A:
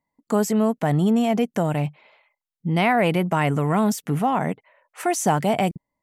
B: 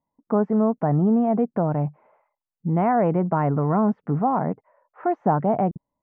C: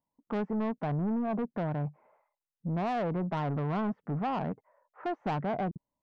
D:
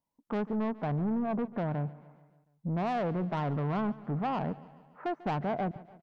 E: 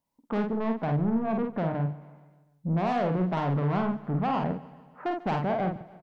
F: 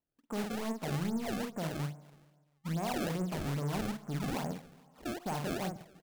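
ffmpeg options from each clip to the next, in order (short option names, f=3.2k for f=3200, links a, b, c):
-af "lowpass=f=1.3k:w=0.5412,lowpass=f=1.3k:w=1.3066"
-af "asoftclip=type=tanh:threshold=-21dB,volume=-6dB"
-af "aecho=1:1:144|288|432|576|720:0.112|0.0628|0.0352|0.0197|0.011"
-filter_complex "[0:a]asplit=2[a][b];[b]adelay=49,volume=-4.5dB[c];[a][c]amix=inputs=2:normalize=0,volume=3dB"
-af "acrusher=samples=26:mix=1:aa=0.000001:lfo=1:lforange=41.6:lforate=2.4,volume=-8dB"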